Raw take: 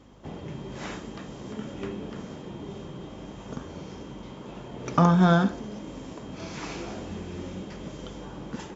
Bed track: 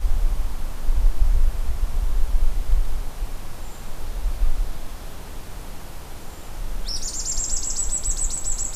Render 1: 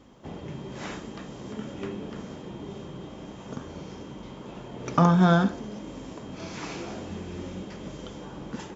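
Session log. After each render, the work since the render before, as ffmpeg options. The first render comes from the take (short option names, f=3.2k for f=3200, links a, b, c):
-af "bandreject=f=50:t=h:w=4,bandreject=f=100:t=h:w=4,bandreject=f=150:t=h:w=4"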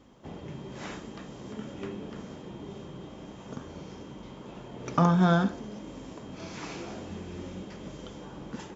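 -af "volume=-3dB"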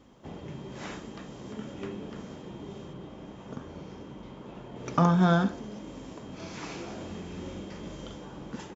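-filter_complex "[0:a]asettb=1/sr,asplit=3[a][b][c];[a]atrim=end=2.934[d];[b]atrim=start=2.93:end=4.76,asetpts=PTS-STARTPTS,afade=t=in:d=0.004:c=qsin,afade=t=out:st=1.826:d=0.004:c=qsin,highshelf=f=4.7k:g=-8.5[e];[c]atrim=start=4.756[f];[d][e]acrossfade=d=0.004:c1=hsin:c2=qsin[g];[g][f]acrossfade=d=0.004:c1=qsin:c2=hsin,asplit=3[h][i][j];[h]afade=t=out:st=6.99:d=0.02[k];[i]asplit=2[l][m];[m]adelay=41,volume=-4.5dB[n];[l][n]amix=inputs=2:normalize=0,afade=t=in:st=6.99:d=0.02,afade=t=out:st=8.15:d=0.02[o];[j]afade=t=in:st=8.15:d=0.02[p];[k][o][p]amix=inputs=3:normalize=0"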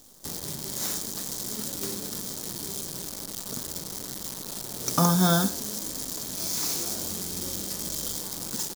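-af "acrusher=bits=8:dc=4:mix=0:aa=0.000001,aexciter=amount=8.5:drive=4.2:freq=3.9k"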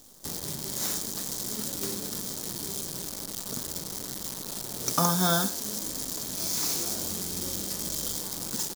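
-filter_complex "[0:a]asettb=1/sr,asplit=3[a][b][c];[a]atrim=end=4.924[d];[b]atrim=start=4.92:end=5.65,asetpts=PTS-STARTPTS,afade=t=in:d=0.004:c=qsin,afade=t=out:st=0.726:d=0.004:c=qsin,lowshelf=f=340:g=-7.5[e];[c]atrim=start=5.646[f];[d][e]acrossfade=d=0.004:c1=hsin:c2=qsin[g];[g][f]acrossfade=d=0.004:c1=qsin:c2=hsin"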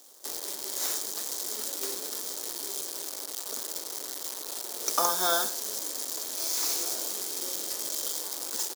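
-af "highpass=f=360:w=0.5412,highpass=f=360:w=1.3066"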